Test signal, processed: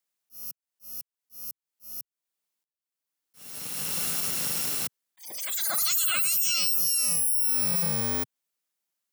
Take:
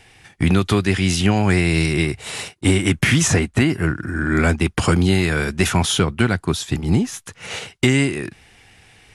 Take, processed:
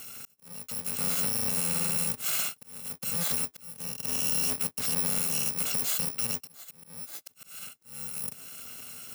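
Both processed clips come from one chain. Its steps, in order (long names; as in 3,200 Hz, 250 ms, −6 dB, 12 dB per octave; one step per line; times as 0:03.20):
samples in bit-reversed order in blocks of 128 samples
high-pass filter 140 Hz 24 dB per octave
high-shelf EQ 5,200 Hz +4 dB
downward compressor 10 to 1, threshold −27 dBFS
brickwall limiter −22 dBFS
volume swells 690 ms
level +4 dB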